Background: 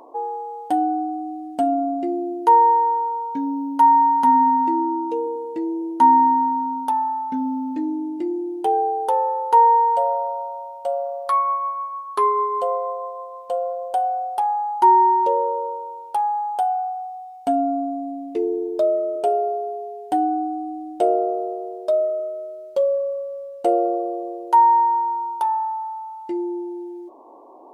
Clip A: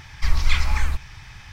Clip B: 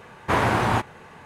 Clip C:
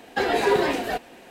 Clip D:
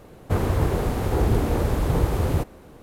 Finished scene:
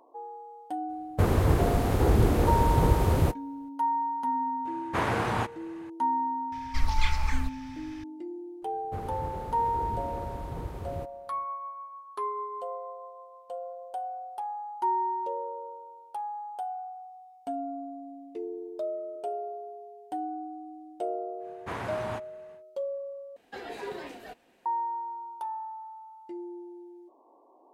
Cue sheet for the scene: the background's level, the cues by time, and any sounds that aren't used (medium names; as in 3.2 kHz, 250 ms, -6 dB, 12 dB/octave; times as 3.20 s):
background -14 dB
0.88 s: add D -1 dB, fades 0.02 s + gate -33 dBFS, range -15 dB
4.65 s: add B -7 dB
6.52 s: add A -7 dB
8.62 s: add D -15.5 dB + treble shelf 5.3 kHz -5.5 dB
21.38 s: add B -15 dB, fades 0.10 s
23.36 s: replace with C -17.5 dB